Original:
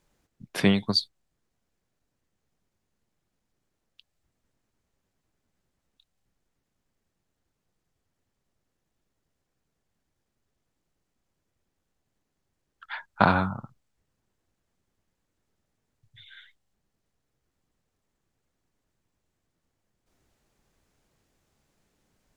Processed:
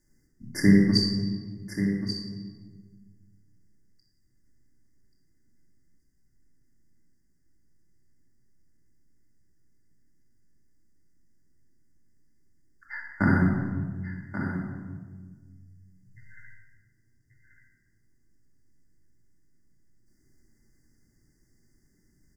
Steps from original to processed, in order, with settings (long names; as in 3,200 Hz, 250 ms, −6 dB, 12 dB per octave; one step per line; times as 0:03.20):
linear-phase brick-wall band-stop 2,100–4,600 Hz
flat-topped bell 810 Hz −16 dB
single-tap delay 1,134 ms −9.5 dB
rectangular room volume 1,400 cubic metres, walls mixed, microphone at 2.5 metres